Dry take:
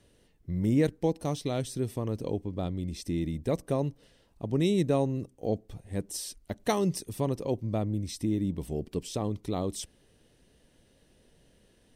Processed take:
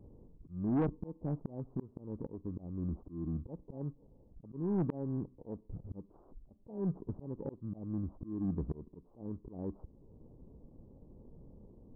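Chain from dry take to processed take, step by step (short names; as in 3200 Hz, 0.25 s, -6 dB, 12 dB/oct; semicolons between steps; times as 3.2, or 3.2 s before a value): FFT order left unsorted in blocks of 32 samples; dynamic EQ 110 Hz, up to -7 dB, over -47 dBFS, Q 2.8; auto swell 0.774 s; Gaussian blur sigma 13 samples; soft clip -36 dBFS, distortion -11 dB; gain +10 dB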